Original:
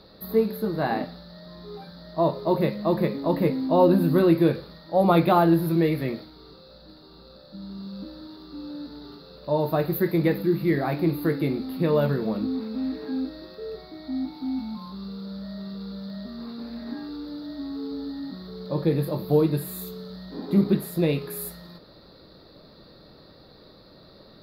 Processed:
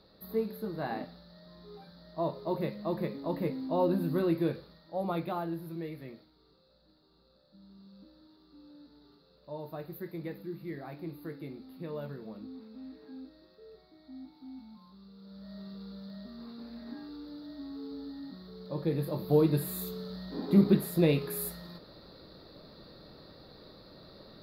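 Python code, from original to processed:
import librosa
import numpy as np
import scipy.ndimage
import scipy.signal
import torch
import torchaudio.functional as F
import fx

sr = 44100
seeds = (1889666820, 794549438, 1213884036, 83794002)

y = fx.gain(x, sr, db=fx.line((4.51, -10.0), (5.54, -17.5), (15.13, -17.5), (15.56, -9.0), (18.77, -9.0), (19.64, -2.0)))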